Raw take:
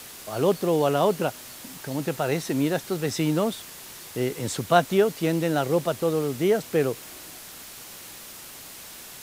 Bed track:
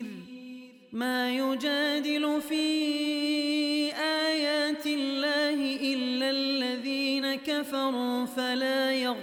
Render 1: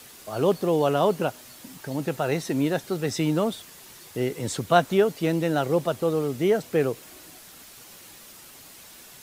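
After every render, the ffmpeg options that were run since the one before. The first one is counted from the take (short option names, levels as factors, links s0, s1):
-af "afftdn=nr=6:nf=-43"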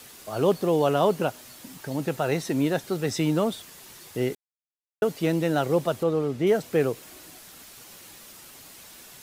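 -filter_complex "[0:a]asettb=1/sr,asplit=3[s0][s1][s2];[s0]atrim=end=6.034[s3];[s1]atrim=start=6.03:end=6.47,asetpts=PTS-STARTPTS,afade=t=in:d=0.004:c=qsin,afade=t=out:st=0.436:d=0.004:c=qsin,aemphasis=mode=reproduction:type=50kf[s4];[s2]atrim=start=6.466[s5];[s3][s4]acrossfade=d=0.004:c1=hsin:c2=qsin[s6];[s6][s5]acrossfade=d=0.004:c1=qsin:c2=hsin,asplit=3[s7][s8][s9];[s7]atrim=end=4.35,asetpts=PTS-STARTPTS,afade=t=out:st=4.346:d=0.004:c=hsin[s10];[s8]atrim=start=4.35:end=5.02,asetpts=PTS-STARTPTS,volume=0[s11];[s9]atrim=start=5.02,asetpts=PTS-STARTPTS,afade=t=in:d=0.004:c=hsin[s12];[s10][s11][s12]concat=n=3:v=0:a=1"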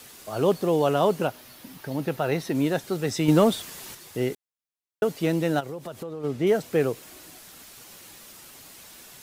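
-filter_complex "[0:a]asettb=1/sr,asplit=3[s0][s1][s2];[s0]atrim=end=1.274[s3];[s1]atrim=start=1.27:end=2.55,asetpts=PTS-STARTPTS,afade=t=in:d=0.004:c=qsin,afade=t=out:st=1.276:d=0.004:c=qsin,equalizer=f=7600:t=o:w=0.7:g=-8[s4];[s2]atrim=start=2.546[s5];[s3][s4]acrossfade=d=0.004:c1=hsin:c2=qsin[s6];[s6][s5]acrossfade=d=0.004:c1=qsin:c2=hsin,asettb=1/sr,asplit=3[s7][s8][s9];[s7]atrim=end=3.284[s10];[s8]atrim=start=3.28:end=3.95,asetpts=PTS-STARTPTS,afade=t=in:d=0.004:c=qsin,afade=t=out:st=0.666:d=0.004:c=qsin,acontrast=55[s11];[s9]atrim=start=3.946[s12];[s10][s11]acrossfade=d=0.004:c1=hsin:c2=qsin[s13];[s13][s12]acrossfade=d=0.004:c1=qsin:c2=hsin,asplit=3[s14][s15][s16];[s14]afade=t=out:st=5.59:d=0.02[s17];[s15]acompressor=threshold=0.0251:ratio=6:attack=3.2:release=140:knee=1:detection=peak,afade=t=in:st=5.59:d=0.02,afade=t=out:st=6.23:d=0.02[s18];[s16]afade=t=in:st=6.23:d=0.02[s19];[s17][s18][s19]amix=inputs=3:normalize=0"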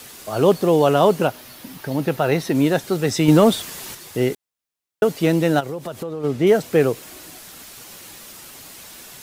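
-af "volume=2.11,alimiter=limit=0.708:level=0:latency=1"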